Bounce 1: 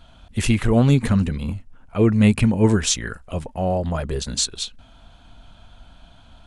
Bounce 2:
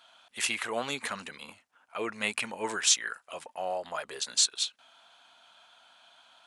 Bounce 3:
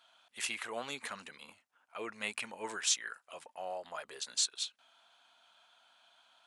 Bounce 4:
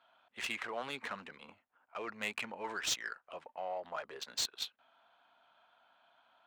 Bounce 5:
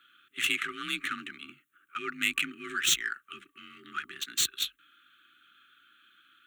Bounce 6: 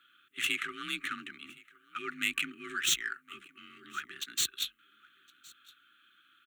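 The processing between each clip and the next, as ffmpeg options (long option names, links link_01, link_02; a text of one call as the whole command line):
ffmpeg -i in.wav -af "highpass=900,volume=-2dB" out.wav
ffmpeg -i in.wav -af "lowshelf=frequency=260:gain=-4,volume=-7dB" out.wav
ffmpeg -i in.wav -filter_complex "[0:a]acrossover=split=600[link_01][link_02];[link_01]alimiter=level_in=19.5dB:limit=-24dB:level=0:latency=1,volume=-19.5dB[link_03];[link_02]asoftclip=type=tanh:threshold=-26.5dB[link_04];[link_03][link_04]amix=inputs=2:normalize=0,adynamicsmooth=sensitivity=7:basefreq=1900,volume=3dB" out.wav
ffmpeg -i in.wav -af "afftfilt=real='re*(1-between(b*sr/4096,360,1100))':imag='im*(1-between(b*sr/4096,360,1100))':win_size=4096:overlap=0.75,aexciter=amount=1.1:drive=3.6:freq=2600,afreqshift=41,volume=8.5dB" out.wav
ffmpeg -i in.wav -af "aecho=1:1:1064:0.0631,volume=-3dB" out.wav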